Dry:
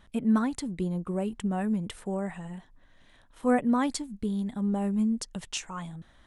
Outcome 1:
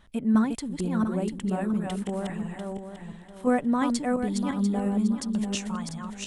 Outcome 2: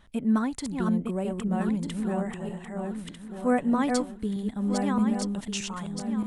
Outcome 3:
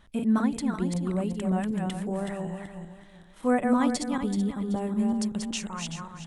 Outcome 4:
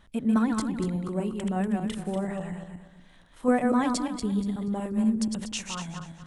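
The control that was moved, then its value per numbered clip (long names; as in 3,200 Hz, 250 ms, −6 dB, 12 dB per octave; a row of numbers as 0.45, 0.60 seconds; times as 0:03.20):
feedback delay that plays each chunk backwards, delay time: 347, 623, 190, 120 milliseconds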